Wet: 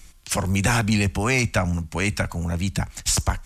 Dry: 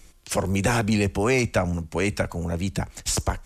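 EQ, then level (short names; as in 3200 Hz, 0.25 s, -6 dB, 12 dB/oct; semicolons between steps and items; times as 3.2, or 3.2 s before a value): bell 430 Hz -9.5 dB 1.4 oct; +4.0 dB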